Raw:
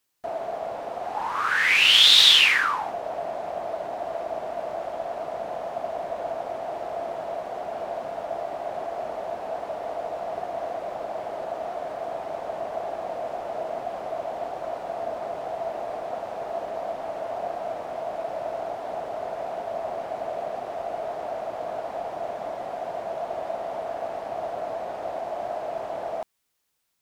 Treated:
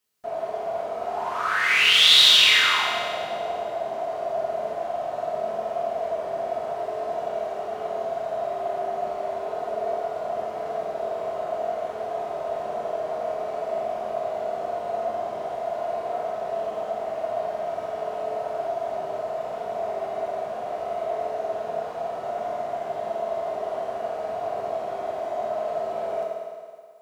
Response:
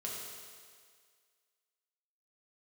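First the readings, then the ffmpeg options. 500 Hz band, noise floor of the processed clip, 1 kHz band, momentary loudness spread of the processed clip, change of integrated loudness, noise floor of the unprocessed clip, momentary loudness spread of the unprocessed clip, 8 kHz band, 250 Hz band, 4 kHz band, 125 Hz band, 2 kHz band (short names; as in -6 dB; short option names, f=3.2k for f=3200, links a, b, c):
+3.0 dB, -34 dBFS, +1.5 dB, 8 LU, +1.0 dB, -36 dBFS, 8 LU, n/a, 0.0 dB, +0.5 dB, +1.0 dB, +0.5 dB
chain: -filter_complex "[1:a]atrim=start_sample=2205[a];[0:a][a]afir=irnorm=-1:irlink=0"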